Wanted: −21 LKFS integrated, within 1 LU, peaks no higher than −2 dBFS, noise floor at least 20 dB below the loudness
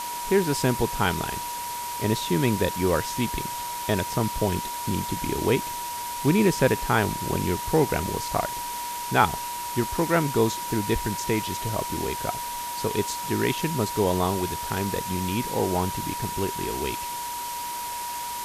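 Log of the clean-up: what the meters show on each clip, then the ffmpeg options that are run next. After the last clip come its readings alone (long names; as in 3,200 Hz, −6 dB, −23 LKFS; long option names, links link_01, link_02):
interfering tone 960 Hz; level of the tone −31 dBFS; background noise floor −33 dBFS; target noise floor −46 dBFS; integrated loudness −26.0 LKFS; sample peak −5.0 dBFS; target loudness −21.0 LKFS
→ -af "bandreject=frequency=960:width=30"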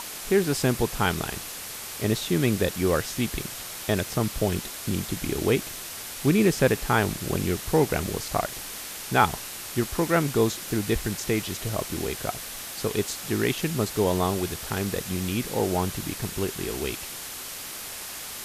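interfering tone none found; background noise floor −37 dBFS; target noise floor −47 dBFS
→ -af "afftdn=noise_reduction=10:noise_floor=-37"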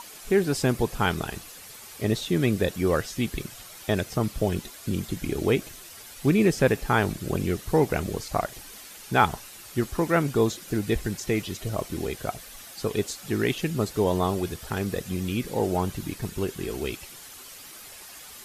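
background noise floor −45 dBFS; target noise floor −47 dBFS
→ -af "afftdn=noise_reduction=6:noise_floor=-45"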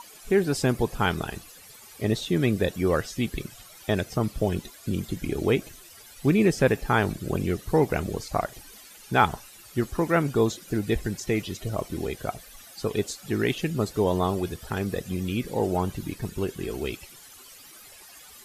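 background noise floor −49 dBFS; integrated loudness −27.0 LKFS; sample peak −6.0 dBFS; target loudness −21.0 LKFS
→ -af "volume=6dB,alimiter=limit=-2dB:level=0:latency=1"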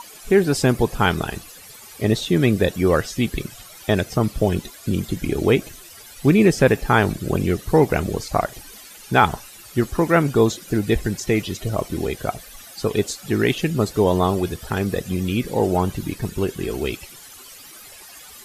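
integrated loudness −21.0 LKFS; sample peak −2.0 dBFS; background noise floor −43 dBFS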